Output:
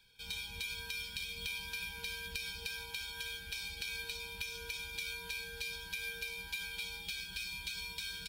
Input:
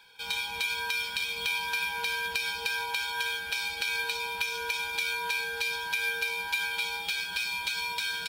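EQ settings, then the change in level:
guitar amp tone stack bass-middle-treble 10-0-1
+13.5 dB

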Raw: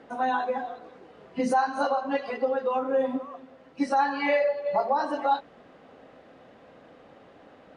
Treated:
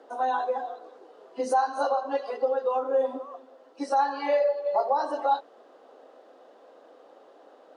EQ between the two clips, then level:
high-pass filter 350 Hz 24 dB per octave
parametric band 2,200 Hz −12.5 dB 1 octave
+1.5 dB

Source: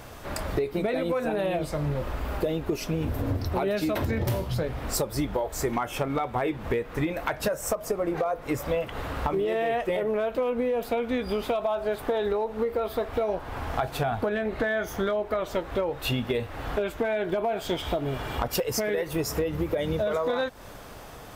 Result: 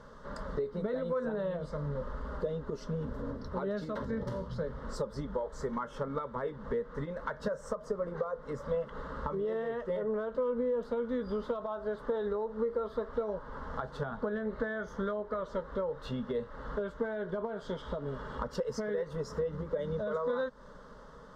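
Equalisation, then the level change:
high-frequency loss of the air 130 metres
high-shelf EQ 4,700 Hz −5 dB
phaser with its sweep stopped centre 490 Hz, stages 8
−4.0 dB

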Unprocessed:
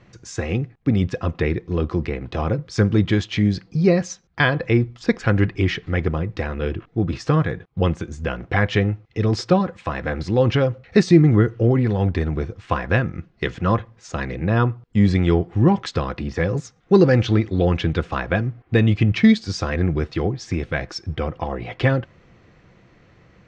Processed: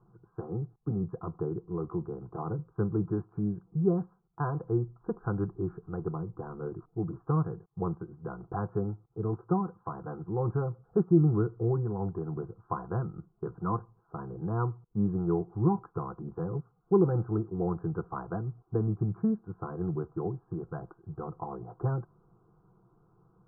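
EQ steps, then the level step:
Butterworth low-pass 1,500 Hz 72 dB per octave
phaser with its sweep stopped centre 380 Hz, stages 8
−8.5 dB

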